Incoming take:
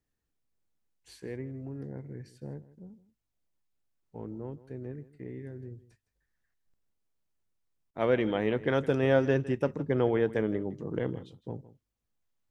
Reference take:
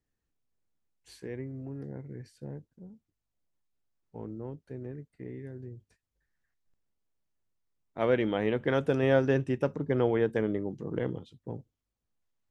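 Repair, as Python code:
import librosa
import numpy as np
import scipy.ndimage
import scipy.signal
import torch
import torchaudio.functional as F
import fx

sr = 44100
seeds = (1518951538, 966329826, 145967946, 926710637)

y = fx.fix_interpolate(x, sr, at_s=(7.91,), length_ms=30.0)
y = fx.fix_echo_inverse(y, sr, delay_ms=160, level_db=-17.5)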